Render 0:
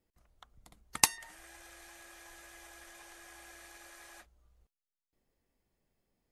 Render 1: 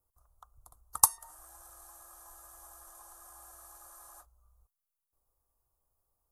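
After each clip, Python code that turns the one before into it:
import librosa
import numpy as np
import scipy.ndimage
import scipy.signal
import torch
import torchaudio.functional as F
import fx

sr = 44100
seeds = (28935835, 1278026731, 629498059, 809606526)

y = fx.curve_eq(x, sr, hz=(100.0, 190.0, 1200.0, 2100.0, 11000.0), db=(0, -19, 5, -26, 8))
y = y * librosa.db_to_amplitude(1.0)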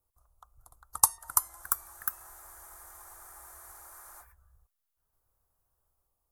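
y = fx.echo_pitch(x, sr, ms=448, semitones=2, count=3, db_per_echo=-3.0)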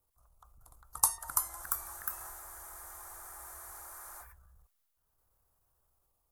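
y = fx.transient(x, sr, attack_db=-8, sustain_db=3)
y = y * librosa.db_to_amplitude(2.5)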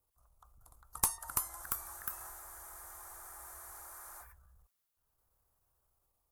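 y = fx.diode_clip(x, sr, knee_db=-19.5)
y = y * librosa.db_to_amplitude(-2.0)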